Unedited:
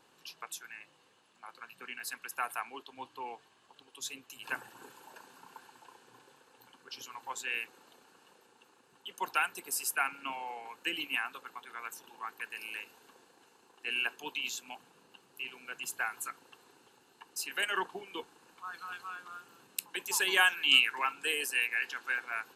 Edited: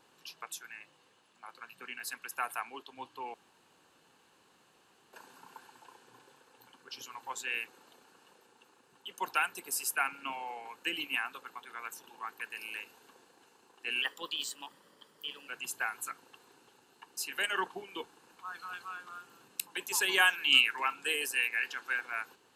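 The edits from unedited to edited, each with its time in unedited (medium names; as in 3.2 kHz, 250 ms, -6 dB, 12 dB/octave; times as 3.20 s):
3.34–5.13 s: room tone
14.02–15.67 s: speed 113%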